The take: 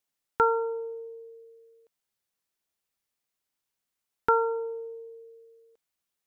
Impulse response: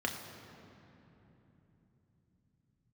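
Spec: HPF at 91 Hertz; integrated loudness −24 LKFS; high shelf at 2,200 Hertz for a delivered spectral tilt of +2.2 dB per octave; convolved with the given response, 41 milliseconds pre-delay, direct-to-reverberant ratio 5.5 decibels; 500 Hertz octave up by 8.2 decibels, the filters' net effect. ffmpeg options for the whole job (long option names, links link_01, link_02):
-filter_complex "[0:a]highpass=91,equalizer=frequency=500:width_type=o:gain=8.5,highshelf=frequency=2200:gain=7.5,asplit=2[link_01][link_02];[1:a]atrim=start_sample=2205,adelay=41[link_03];[link_02][link_03]afir=irnorm=-1:irlink=0,volume=-11dB[link_04];[link_01][link_04]amix=inputs=2:normalize=0"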